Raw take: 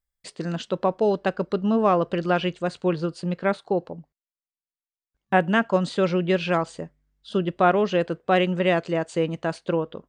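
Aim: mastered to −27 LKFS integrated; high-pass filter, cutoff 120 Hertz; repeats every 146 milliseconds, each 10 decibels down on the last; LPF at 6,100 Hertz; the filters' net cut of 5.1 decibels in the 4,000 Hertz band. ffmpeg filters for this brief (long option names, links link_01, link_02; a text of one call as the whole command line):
ffmpeg -i in.wav -af "highpass=120,lowpass=6100,equalizer=frequency=4000:width_type=o:gain=-7.5,aecho=1:1:146|292|438|584:0.316|0.101|0.0324|0.0104,volume=-3dB" out.wav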